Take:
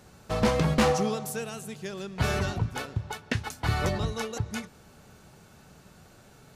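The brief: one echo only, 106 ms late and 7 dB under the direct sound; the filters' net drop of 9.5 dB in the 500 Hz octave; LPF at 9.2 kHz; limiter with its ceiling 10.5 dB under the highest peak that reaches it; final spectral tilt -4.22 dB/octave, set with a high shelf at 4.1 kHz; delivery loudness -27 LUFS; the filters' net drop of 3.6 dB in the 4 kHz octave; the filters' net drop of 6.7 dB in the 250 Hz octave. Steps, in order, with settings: low-pass 9.2 kHz; peaking EQ 250 Hz -8 dB; peaking EQ 500 Hz -9 dB; peaking EQ 4 kHz -8.5 dB; treble shelf 4.1 kHz +6.5 dB; peak limiter -26 dBFS; delay 106 ms -7 dB; trim +9.5 dB

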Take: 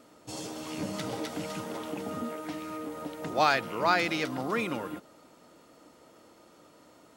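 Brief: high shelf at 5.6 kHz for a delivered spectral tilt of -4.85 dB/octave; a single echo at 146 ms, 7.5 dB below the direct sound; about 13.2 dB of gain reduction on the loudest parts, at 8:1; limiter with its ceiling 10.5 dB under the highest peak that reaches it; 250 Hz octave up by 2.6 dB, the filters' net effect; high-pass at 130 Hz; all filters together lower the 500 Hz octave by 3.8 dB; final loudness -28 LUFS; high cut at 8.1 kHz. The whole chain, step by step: high-pass 130 Hz; low-pass 8.1 kHz; peaking EQ 250 Hz +6 dB; peaking EQ 500 Hz -6.5 dB; treble shelf 5.6 kHz -3.5 dB; compression 8:1, threshold -34 dBFS; peak limiter -34 dBFS; delay 146 ms -7.5 dB; trim +14.5 dB

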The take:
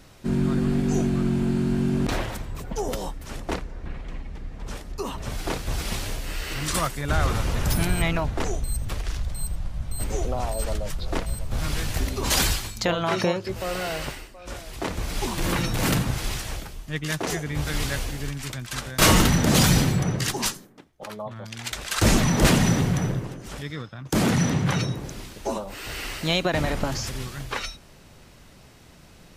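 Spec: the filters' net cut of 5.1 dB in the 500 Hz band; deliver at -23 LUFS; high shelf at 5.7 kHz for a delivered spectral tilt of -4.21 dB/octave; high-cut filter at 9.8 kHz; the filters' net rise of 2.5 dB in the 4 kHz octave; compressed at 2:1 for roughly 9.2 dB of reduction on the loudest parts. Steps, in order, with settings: low-pass 9.8 kHz; peaking EQ 500 Hz -7 dB; peaking EQ 4 kHz +5 dB; treble shelf 5.7 kHz -4.5 dB; compression 2:1, threshold -31 dBFS; trim +9.5 dB

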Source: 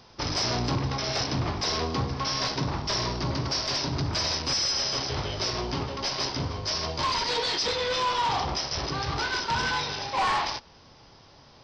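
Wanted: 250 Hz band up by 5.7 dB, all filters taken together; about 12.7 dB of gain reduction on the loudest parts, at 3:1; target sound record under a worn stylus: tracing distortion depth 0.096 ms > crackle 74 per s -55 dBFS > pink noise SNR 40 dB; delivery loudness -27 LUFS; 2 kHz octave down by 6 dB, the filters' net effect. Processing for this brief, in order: peaking EQ 250 Hz +7.5 dB; peaking EQ 2 kHz -8.5 dB; compression 3:1, threshold -39 dBFS; tracing distortion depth 0.096 ms; crackle 74 per s -55 dBFS; pink noise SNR 40 dB; trim +11 dB

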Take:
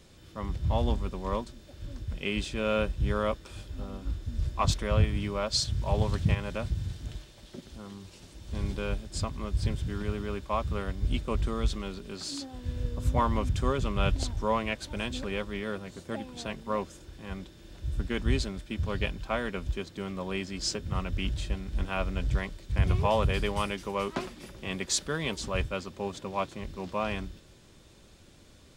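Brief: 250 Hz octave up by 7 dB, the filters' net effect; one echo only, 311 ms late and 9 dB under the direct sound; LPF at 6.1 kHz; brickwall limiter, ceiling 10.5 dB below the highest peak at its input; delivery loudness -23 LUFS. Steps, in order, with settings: low-pass 6.1 kHz; peaking EQ 250 Hz +9 dB; peak limiter -20 dBFS; delay 311 ms -9 dB; trim +8.5 dB

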